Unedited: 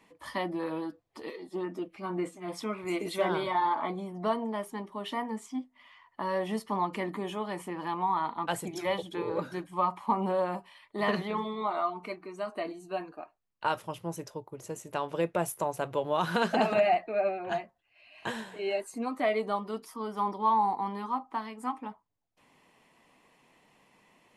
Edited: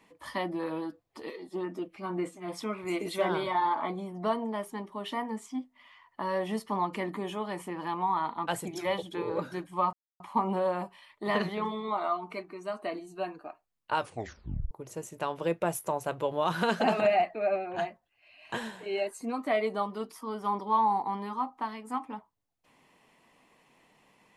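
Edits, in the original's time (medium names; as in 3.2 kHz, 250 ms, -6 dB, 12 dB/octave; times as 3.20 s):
9.93 s: insert silence 0.27 s
13.73 s: tape stop 0.71 s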